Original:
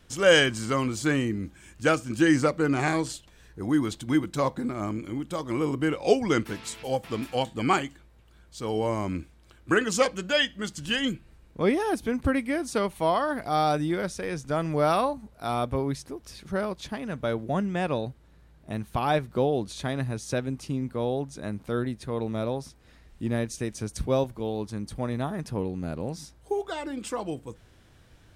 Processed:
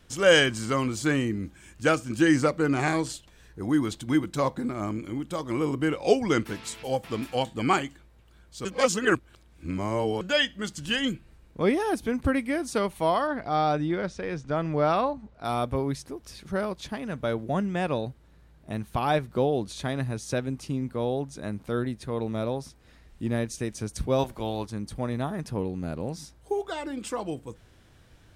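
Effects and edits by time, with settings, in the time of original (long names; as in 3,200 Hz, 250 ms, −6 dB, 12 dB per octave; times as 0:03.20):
0:08.65–0:10.21: reverse
0:13.27–0:15.45: high-frequency loss of the air 120 metres
0:24.18–0:24.65: ceiling on every frequency bin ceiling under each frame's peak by 13 dB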